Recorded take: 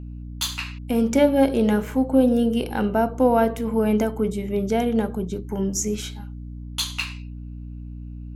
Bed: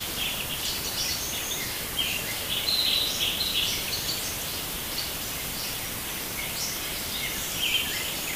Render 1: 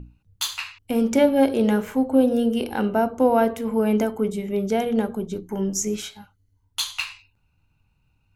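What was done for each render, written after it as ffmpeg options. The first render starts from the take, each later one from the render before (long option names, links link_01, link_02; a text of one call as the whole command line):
ffmpeg -i in.wav -af "bandreject=frequency=60:width_type=h:width=6,bandreject=frequency=120:width_type=h:width=6,bandreject=frequency=180:width_type=h:width=6,bandreject=frequency=240:width_type=h:width=6,bandreject=frequency=300:width_type=h:width=6" out.wav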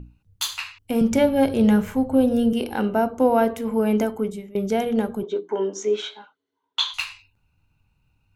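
ffmpeg -i in.wav -filter_complex "[0:a]asettb=1/sr,asplit=3[link_01][link_02][link_03];[link_01]atrim=end=1.014[link_04];[link_02]atrim=start=1.01:end=2.53,asetpts=PTS-STARTPTS,afade=type=in:duration=0.004:curve=qsin,afade=type=out:start_time=1.516:duration=0.004:curve=qsin,lowshelf=frequency=210:width_type=q:width=1.5:gain=9.5[link_05];[link_03]atrim=start=2.526[link_06];[link_04][link_05]acrossfade=duration=0.004:curve1=hsin:curve2=qsin[link_07];[link_07][link_06]acrossfade=duration=0.004:curve1=qsin:curve2=hsin,asettb=1/sr,asplit=3[link_08][link_09][link_10];[link_08]atrim=end=5.234[link_11];[link_09]atrim=start=5.23:end=6.94,asetpts=PTS-STARTPTS,afade=type=in:duration=0.004:curve=qsin,afade=type=out:start_time=1.706:duration=0.004:curve=qsin,highpass=frequency=280:width=0.5412,highpass=frequency=280:width=1.3066,equalizer=frequency=420:width_type=q:width=4:gain=8,equalizer=frequency=610:width_type=q:width=4:gain=4,equalizer=frequency=1000:width_type=q:width=4:gain=8,equalizer=frequency=1500:width_type=q:width=4:gain=5,equalizer=frequency=3500:width_type=q:width=4:gain=8,equalizer=frequency=5000:width_type=q:width=4:gain=-8,lowpass=frequency=5300:width=0.5412,lowpass=frequency=5300:width=1.3066[link_12];[link_10]atrim=start=6.936[link_13];[link_11][link_12]acrossfade=duration=0.004:curve1=hsin:curve2=qsin[link_14];[link_14][link_13]acrossfade=duration=0.004:curve1=qsin:curve2=hsin,asplit=2[link_15][link_16];[link_15]atrim=end=4.55,asetpts=PTS-STARTPTS,afade=type=out:start_time=4.02:duration=0.53:curve=qsin:silence=0.0794328[link_17];[link_16]atrim=start=4.55,asetpts=PTS-STARTPTS,afade=type=in:duration=0.004:curve=hsin:silence=0.0794328[link_18];[link_17][link_18]concat=n=2:v=0:a=1" out.wav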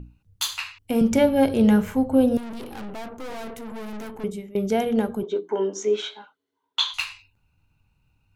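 ffmpeg -i in.wav -filter_complex "[0:a]asettb=1/sr,asplit=3[link_01][link_02][link_03];[link_01]atrim=end=2.374[link_04];[link_02]atrim=start=2.37:end=4.24,asetpts=PTS-STARTPTS,afade=type=in:duration=0.004:curve=qsin,afade=type=out:start_time=1.866:duration=0.004:curve=qsin,aeval=exprs='(tanh(50.1*val(0)+0.6)-tanh(0.6))/50.1':channel_layout=same[link_05];[link_03]atrim=start=4.236[link_06];[link_04][link_05]acrossfade=duration=0.004:curve1=hsin:curve2=qsin[link_07];[link_07][link_06]acrossfade=duration=0.004:curve1=qsin:curve2=hsin" out.wav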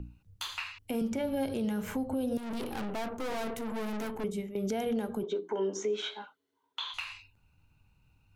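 ffmpeg -i in.wav -filter_complex "[0:a]acrossover=split=180|3200[link_01][link_02][link_03];[link_01]acompressor=threshold=-39dB:ratio=4[link_04];[link_02]acompressor=threshold=-24dB:ratio=4[link_05];[link_03]acompressor=threshold=-41dB:ratio=4[link_06];[link_04][link_05][link_06]amix=inputs=3:normalize=0,alimiter=limit=-24dB:level=0:latency=1:release=175" out.wav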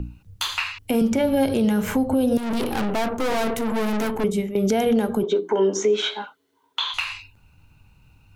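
ffmpeg -i in.wav -af "volume=12dB" out.wav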